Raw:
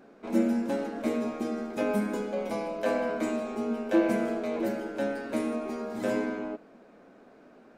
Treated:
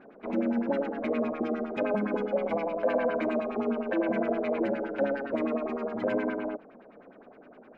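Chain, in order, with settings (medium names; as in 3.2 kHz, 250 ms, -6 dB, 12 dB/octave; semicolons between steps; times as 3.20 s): peak limiter -21.5 dBFS, peak gain reduction 8.5 dB; LFO low-pass sine 9.7 Hz 500–3000 Hz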